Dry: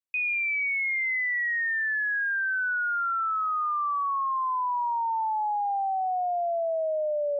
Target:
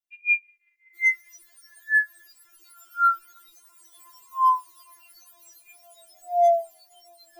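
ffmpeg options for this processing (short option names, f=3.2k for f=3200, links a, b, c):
-filter_complex "[0:a]acrossover=split=890|1100|1300[a][b][c][d];[b]acrusher=bits=7:mix=0:aa=0.000001[e];[a][e][c][d]amix=inputs=4:normalize=0,afftfilt=real='re*4*eq(mod(b,16),0)':imag='im*4*eq(mod(b,16),0)':win_size=2048:overlap=0.75,volume=1.5dB"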